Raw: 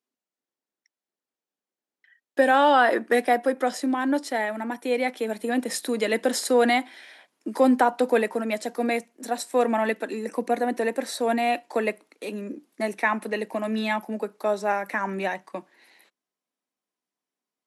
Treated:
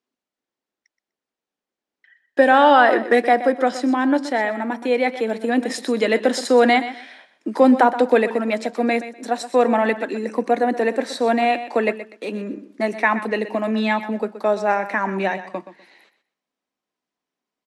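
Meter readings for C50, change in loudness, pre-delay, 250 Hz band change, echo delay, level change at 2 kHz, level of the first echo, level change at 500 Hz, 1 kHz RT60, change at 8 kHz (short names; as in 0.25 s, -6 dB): none, +5.5 dB, none, +5.5 dB, 0.124 s, +5.0 dB, -13.0 dB, +5.5 dB, none, -2.0 dB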